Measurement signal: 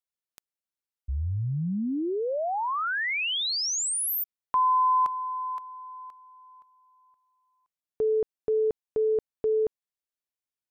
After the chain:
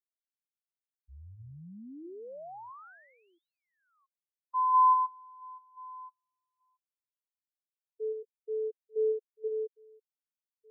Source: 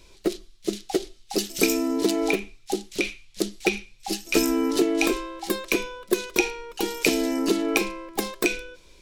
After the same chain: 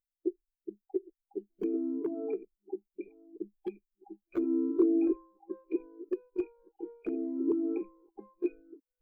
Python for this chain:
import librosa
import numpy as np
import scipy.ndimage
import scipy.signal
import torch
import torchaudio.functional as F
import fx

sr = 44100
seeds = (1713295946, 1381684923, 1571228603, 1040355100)

y = fx.reverse_delay(x, sr, ms=677, wet_db=-9.5)
y = scipy.signal.sosfilt(scipy.signal.butter(2, 1600.0, 'lowpass', fs=sr, output='sos'), y)
y = fx.low_shelf(y, sr, hz=310.0, db=-3.5)
y = fx.dmg_noise_colour(y, sr, seeds[0], colour='blue', level_db=-41.0)
y = (np.mod(10.0 ** (13.5 / 20.0) * y + 1.0, 2.0) - 1.0) / 10.0 ** (13.5 / 20.0)
y = fx.spectral_expand(y, sr, expansion=2.5)
y = y * librosa.db_to_amplitude(-1.5)